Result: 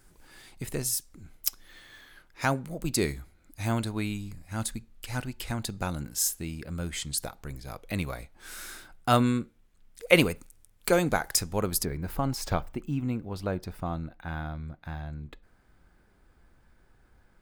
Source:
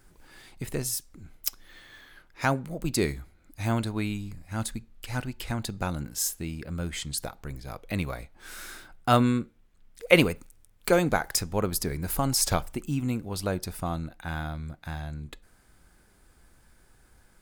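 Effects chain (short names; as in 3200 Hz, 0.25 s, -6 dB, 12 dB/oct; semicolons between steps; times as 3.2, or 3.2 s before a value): bell 10000 Hz +3.5 dB 2 oct, from 11.85 s -14 dB; gain -1.5 dB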